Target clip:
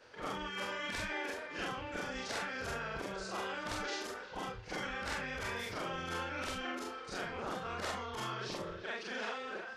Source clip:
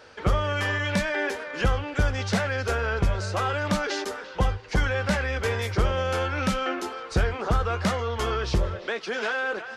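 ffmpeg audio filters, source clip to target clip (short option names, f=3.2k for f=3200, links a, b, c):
-af "afftfilt=real='re':imag='-im':win_size=4096:overlap=0.75,afftfilt=real='re*lt(hypot(re,im),0.141)':imag='im*lt(hypot(re,im),0.141)':win_size=1024:overlap=0.75,volume=-4.5dB"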